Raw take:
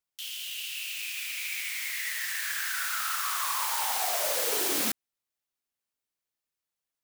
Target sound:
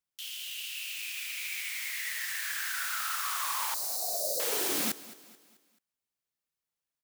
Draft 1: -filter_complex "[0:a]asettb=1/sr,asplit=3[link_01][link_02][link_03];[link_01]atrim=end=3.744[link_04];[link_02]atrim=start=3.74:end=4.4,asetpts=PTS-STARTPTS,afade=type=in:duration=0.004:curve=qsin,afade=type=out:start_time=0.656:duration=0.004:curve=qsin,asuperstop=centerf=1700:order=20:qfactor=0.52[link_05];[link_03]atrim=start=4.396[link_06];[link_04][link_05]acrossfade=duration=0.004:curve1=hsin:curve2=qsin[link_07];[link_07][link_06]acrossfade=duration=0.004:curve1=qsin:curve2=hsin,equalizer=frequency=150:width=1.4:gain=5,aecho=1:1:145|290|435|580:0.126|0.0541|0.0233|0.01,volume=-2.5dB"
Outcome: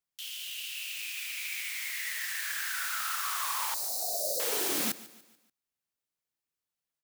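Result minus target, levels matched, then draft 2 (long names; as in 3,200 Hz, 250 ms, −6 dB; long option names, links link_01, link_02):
echo 72 ms early
-filter_complex "[0:a]asettb=1/sr,asplit=3[link_01][link_02][link_03];[link_01]atrim=end=3.744[link_04];[link_02]atrim=start=3.74:end=4.4,asetpts=PTS-STARTPTS,afade=type=in:duration=0.004:curve=qsin,afade=type=out:start_time=0.656:duration=0.004:curve=qsin,asuperstop=centerf=1700:order=20:qfactor=0.52[link_05];[link_03]atrim=start=4.396[link_06];[link_04][link_05]acrossfade=duration=0.004:curve1=hsin:curve2=qsin[link_07];[link_07][link_06]acrossfade=duration=0.004:curve1=qsin:curve2=hsin,equalizer=frequency=150:width=1.4:gain=5,aecho=1:1:217|434|651|868:0.126|0.0541|0.0233|0.01,volume=-2.5dB"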